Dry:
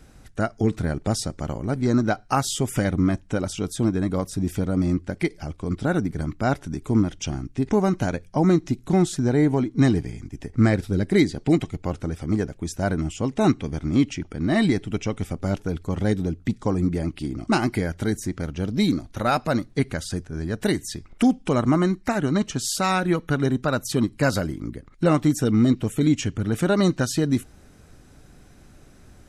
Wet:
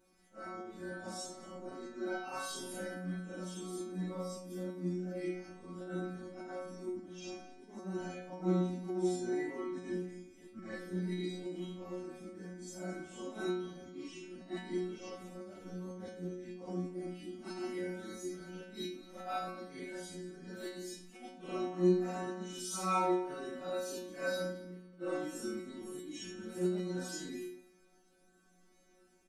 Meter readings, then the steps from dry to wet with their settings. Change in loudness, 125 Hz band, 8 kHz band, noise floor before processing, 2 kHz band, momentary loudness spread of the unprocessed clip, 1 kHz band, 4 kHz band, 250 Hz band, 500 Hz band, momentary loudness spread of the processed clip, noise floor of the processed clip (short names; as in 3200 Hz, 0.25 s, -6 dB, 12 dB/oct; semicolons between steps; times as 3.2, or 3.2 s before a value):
-16.0 dB, -21.0 dB, -14.0 dB, -51 dBFS, -15.5 dB, 9 LU, -13.5 dB, -15.0 dB, -17.5 dB, -12.5 dB, 13 LU, -66 dBFS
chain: phase scrambler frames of 0.2 s; auto swell 0.162 s; resonant low shelf 190 Hz -8 dB, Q 3; metallic resonator 180 Hz, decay 0.73 s, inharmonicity 0.002; on a send: echo 0.217 s -18 dB; on the sum: gain +1.5 dB